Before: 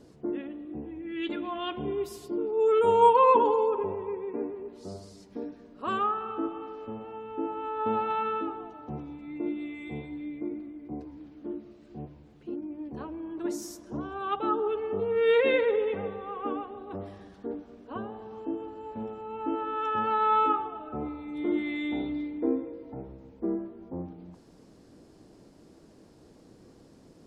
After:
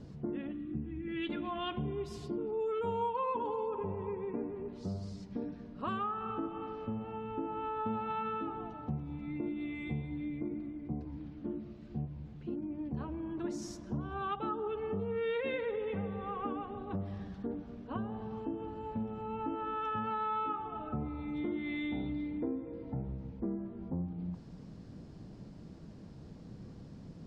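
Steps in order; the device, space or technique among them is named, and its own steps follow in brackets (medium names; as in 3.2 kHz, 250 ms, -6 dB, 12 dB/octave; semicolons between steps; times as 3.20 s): jukebox (low-pass 5.4 kHz 12 dB/octave; resonant low shelf 240 Hz +9 dB, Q 1.5; compression 4:1, threshold -34 dBFS, peak gain reduction 16 dB); 0.52–1.08 s: high-order bell 660 Hz -11.5 dB 1.3 oct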